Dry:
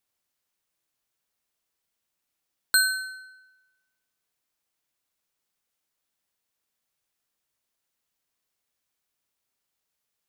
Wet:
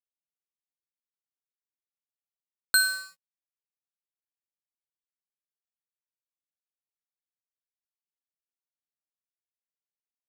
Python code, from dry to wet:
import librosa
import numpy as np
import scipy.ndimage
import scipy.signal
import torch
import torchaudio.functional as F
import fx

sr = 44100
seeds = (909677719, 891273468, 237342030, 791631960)

y = np.sign(x) * np.maximum(np.abs(x) - 10.0 ** (-37.0 / 20.0), 0.0)